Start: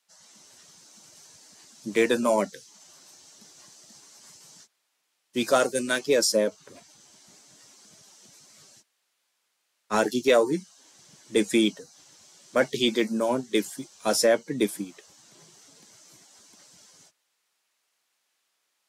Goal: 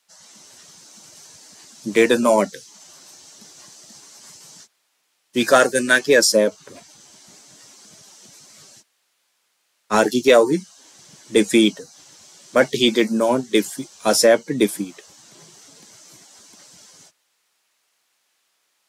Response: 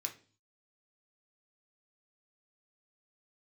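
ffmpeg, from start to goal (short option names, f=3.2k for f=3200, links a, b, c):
-filter_complex "[0:a]asettb=1/sr,asplit=3[a][b][c];[a]atrim=end=5.404[d];[b]atrim=start=5.4:end=6.2,asetpts=PTS-STARTPTS,afade=t=in:d=0.004:c=qsin,afade=t=out:st=0.796:d=0.004:c=qsin,equalizer=f=1.7k:t=o:w=0.3:g=11.5[e];[c]atrim=start=6.196[f];[d][e]acrossfade=d=0.004:c1=hsin:c2=qsin[g];[g][f]acrossfade=d=0.004:c1=qsin:c2=hsin,volume=7dB"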